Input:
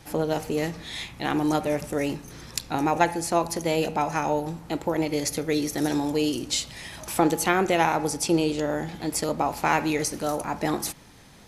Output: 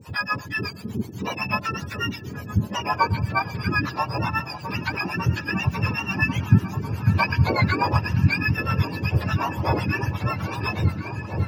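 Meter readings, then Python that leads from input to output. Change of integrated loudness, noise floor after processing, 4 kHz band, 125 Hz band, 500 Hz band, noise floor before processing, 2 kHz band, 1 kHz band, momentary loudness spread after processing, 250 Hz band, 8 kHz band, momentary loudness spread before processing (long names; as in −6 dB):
+1.5 dB, −37 dBFS, −1.0 dB, +12.5 dB, −7.0 dB, −49 dBFS, +6.5 dB, 0.0 dB, 8 LU, −1.5 dB, below −10 dB, 8 LU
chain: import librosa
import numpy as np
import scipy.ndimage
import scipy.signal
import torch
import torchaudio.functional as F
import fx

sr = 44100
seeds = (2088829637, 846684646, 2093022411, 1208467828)

y = fx.octave_mirror(x, sr, pivot_hz=890.0)
y = fx.harmonic_tremolo(y, sr, hz=8.1, depth_pct=100, crossover_hz=540.0)
y = fx.echo_opening(y, sr, ms=548, hz=200, octaves=1, feedback_pct=70, wet_db=-3)
y = y * 10.0 ** (5.0 / 20.0)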